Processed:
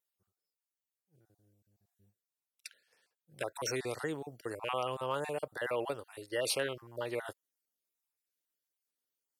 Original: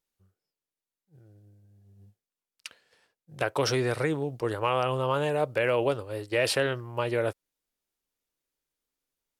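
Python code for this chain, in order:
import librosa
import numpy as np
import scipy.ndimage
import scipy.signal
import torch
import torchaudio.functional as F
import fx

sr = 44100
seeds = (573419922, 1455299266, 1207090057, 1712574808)

y = fx.spec_dropout(x, sr, seeds[0], share_pct=30)
y = fx.highpass(y, sr, hz=250.0, slope=6)
y = fx.high_shelf(y, sr, hz=7000.0, db=9.5)
y = y * librosa.db_to_amplitude(-7.0)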